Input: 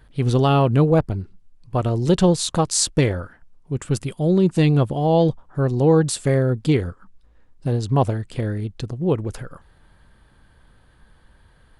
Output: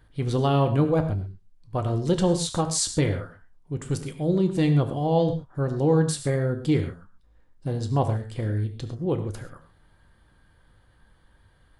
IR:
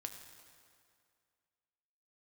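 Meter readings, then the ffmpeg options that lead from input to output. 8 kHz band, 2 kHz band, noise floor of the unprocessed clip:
−5.0 dB, −5.5 dB, −55 dBFS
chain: -filter_complex "[0:a]bandreject=frequency=2600:width=16[link_01];[1:a]atrim=start_sample=2205,afade=type=out:start_time=0.19:duration=0.01,atrim=end_sample=8820[link_02];[link_01][link_02]afir=irnorm=-1:irlink=0,volume=-1.5dB"

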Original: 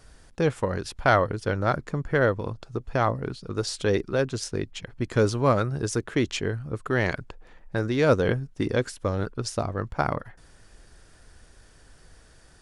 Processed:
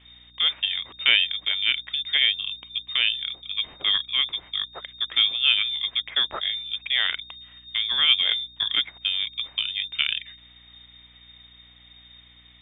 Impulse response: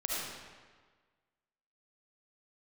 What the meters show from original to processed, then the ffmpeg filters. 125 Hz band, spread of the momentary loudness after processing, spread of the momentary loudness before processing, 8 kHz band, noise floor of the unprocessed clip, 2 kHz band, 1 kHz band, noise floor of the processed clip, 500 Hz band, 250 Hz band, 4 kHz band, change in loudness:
below −25 dB, 11 LU, 11 LU, below −40 dB, −55 dBFS, +3.5 dB, −12.0 dB, −52 dBFS, −24.5 dB, below −25 dB, +20.5 dB, +4.0 dB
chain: -af "highshelf=frequency=2600:gain=5.5,lowpass=frequency=3100:width_type=q:width=0.5098,lowpass=frequency=3100:width_type=q:width=0.6013,lowpass=frequency=3100:width_type=q:width=0.9,lowpass=frequency=3100:width_type=q:width=2.563,afreqshift=-3700,aeval=exprs='val(0)+0.00141*(sin(2*PI*60*n/s)+sin(2*PI*2*60*n/s)/2+sin(2*PI*3*60*n/s)/3+sin(2*PI*4*60*n/s)/4+sin(2*PI*5*60*n/s)/5)':channel_layout=same"

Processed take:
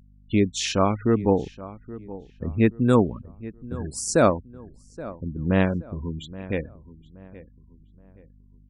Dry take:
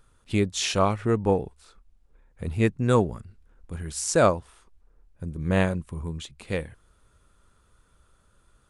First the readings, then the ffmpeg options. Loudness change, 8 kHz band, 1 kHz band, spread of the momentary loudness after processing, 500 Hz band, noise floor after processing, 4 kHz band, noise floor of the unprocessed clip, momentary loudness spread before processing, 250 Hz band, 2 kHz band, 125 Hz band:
+1.5 dB, −0.5 dB, +0.5 dB, 18 LU, +1.5 dB, −53 dBFS, −0.5 dB, −63 dBFS, 17 LU, +4.5 dB, 0.0 dB, +1.0 dB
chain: -filter_complex "[0:a]afftfilt=real='re*gte(hypot(re,im),0.0178)':imag='im*gte(hypot(re,im),0.0178)':win_size=1024:overlap=0.75,equalizer=frequency=260:width_type=o:width=0.8:gain=7,aeval=exprs='val(0)+0.00251*(sin(2*PI*50*n/s)+sin(2*PI*2*50*n/s)/2+sin(2*PI*3*50*n/s)/3+sin(2*PI*4*50*n/s)/4+sin(2*PI*5*50*n/s)/5)':channel_layout=same,asplit=2[link_01][link_02];[link_02]adelay=824,lowpass=frequency=1900:poles=1,volume=-17dB,asplit=2[link_03][link_04];[link_04]adelay=824,lowpass=frequency=1900:poles=1,volume=0.36,asplit=2[link_05][link_06];[link_06]adelay=824,lowpass=frequency=1900:poles=1,volume=0.36[link_07];[link_03][link_05][link_07]amix=inputs=3:normalize=0[link_08];[link_01][link_08]amix=inputs=2:normalize=0"

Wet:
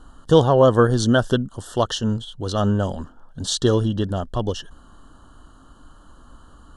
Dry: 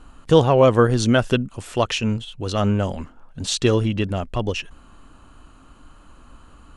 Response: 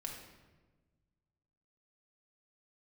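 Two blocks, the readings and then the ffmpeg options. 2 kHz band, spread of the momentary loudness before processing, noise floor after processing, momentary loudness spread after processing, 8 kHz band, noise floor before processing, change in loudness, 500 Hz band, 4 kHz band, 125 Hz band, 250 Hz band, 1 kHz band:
−2.5 dB, 14 LU, −49 dBFS, 13 LU, 0.0 dB, −49 dBFS, 0.0 dB, 0.0 dB, −0.5 dB, 0.0 dB, 0.0 dB, 0.0 dB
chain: -af "asuperstop=centerf=2300:order=12:qfactor=2.1"

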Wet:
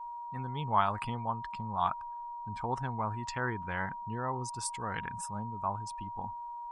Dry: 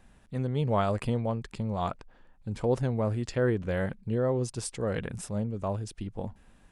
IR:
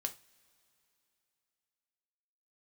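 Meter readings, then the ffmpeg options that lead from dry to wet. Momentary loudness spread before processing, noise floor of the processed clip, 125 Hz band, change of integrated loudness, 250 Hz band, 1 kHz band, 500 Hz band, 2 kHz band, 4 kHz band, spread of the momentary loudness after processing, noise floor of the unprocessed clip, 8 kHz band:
11 LU, −42 dBFS, −9.0 dB, −4.5 dB, −9.5 dB, +5.5 dB, −12.0 dB, +1.5 dB, −2.0 dB, 9 LU, −59 dBFS, −1.0 dB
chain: -af "lowshelf=frequency=700:width_type=q:width=3:gain=-8.5,aeval=exprs='val(0)+0.0112*sin(2*PI*950*n/s)':channel_layout=same,afftdn=noise_reduction=19:noise_floor=-47"

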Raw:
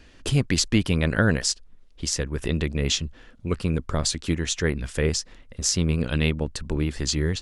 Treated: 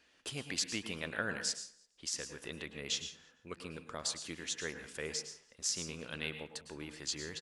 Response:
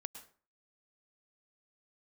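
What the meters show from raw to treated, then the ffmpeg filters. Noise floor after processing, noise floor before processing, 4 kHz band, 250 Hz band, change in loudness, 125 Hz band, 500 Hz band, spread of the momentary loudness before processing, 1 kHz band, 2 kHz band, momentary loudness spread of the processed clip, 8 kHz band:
−69 dBFS, −51 dBFS, −10.5 dB, −20.5 dB, −14.0 dB, −26.0 dB, −16.5 dB, 8 LU, −12.0 dB, −11.0 dB, 11 LU, −10.5 dB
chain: -filter_complex "[0:a]highpass=frequency=770:poles=1,aecho=1:1:168|336:0.0708|0.0234[link_01];[1:a]atrim=start_sample=2205[link_02];[link_01][link_02]afir=irnorm=-1:irlink=0,volume=-7dB"

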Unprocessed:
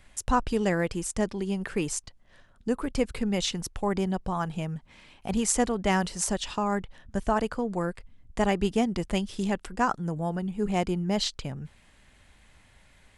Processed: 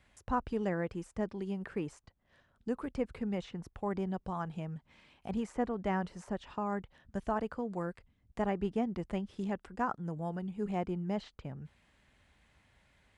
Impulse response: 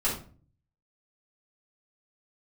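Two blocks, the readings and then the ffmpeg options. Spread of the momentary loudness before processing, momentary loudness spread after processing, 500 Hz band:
9 LU, 10 LU, −7.5 dB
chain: -filter_complex "[0:a]highpass=46,highshelf=frequency=7000:gain=-10.5,acrossover=split=2100[link_01][link_02];[link_02]acompressor=threshold=-52dB:ratio=5[link_03];[link_01][link_03]amix=inputs=2:normalize=0,volume=-7.5dB"

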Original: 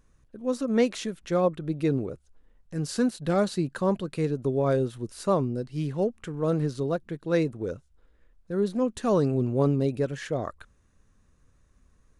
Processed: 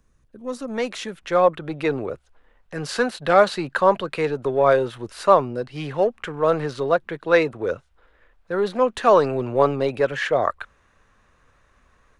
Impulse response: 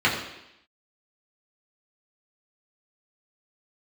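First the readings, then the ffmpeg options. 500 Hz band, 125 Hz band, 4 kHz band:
+7.5 dB, −4.0 dB, +8.0 dB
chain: -filter_complex "[0:a]acrossover=split=100|530|3600[link_01][link_02][link_03][link_04];[link_02]asoftclip=type=tanh:threshold=-29.5dB[link_05];[link_03]dynaudnorm=framelen=810:gausssize=3:maxgain=15.5dB[link_06];[link_01][link_05][link_06][link_04]amix=inputs=4:normalize=0"

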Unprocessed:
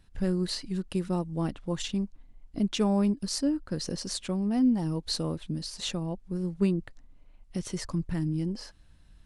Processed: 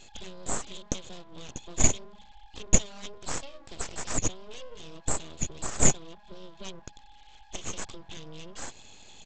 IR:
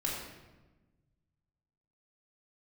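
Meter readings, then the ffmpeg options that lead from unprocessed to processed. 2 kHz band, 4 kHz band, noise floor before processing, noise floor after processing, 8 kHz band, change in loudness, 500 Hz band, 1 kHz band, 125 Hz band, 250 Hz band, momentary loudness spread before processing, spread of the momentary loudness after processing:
+5.0 dB, −5.0 dB, −57 dBFS, −53 dBFS, +12.0 dB, −0.5 dB, −5.0 dB, +0.5 dB, −6.0 dB, −12.0 dB, 10 LU, 21 LU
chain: -af "equalizer=frequency=650:width=1.2:gain=-4.5,bandreject=frequency=50:width_type=h:width=6,bandreject=frequency=100:width_type=h:width=6,bandreject=frequency=150:width_type=h:width=6,bandreject=frequency=200:width_type=h:width=6,bandreject=frequency=250:width_type=h:width=6,bandreject=frequency=300:width_type=h:width=6,acompressor=threshold=-40dB:ratio=4,lowpass=frequency=3400:width_type=q:width=16,aeval=exprs='val(0)+0.00224*sin(2*PI*830*n/s)':channel_layout=same,aexciter=amount=3.8:drive=6.8:freq=2400,aresample=16000,aeval=exprs='abs(val(0))':channel_layout=same,aresample=44100,volume=-1dB"

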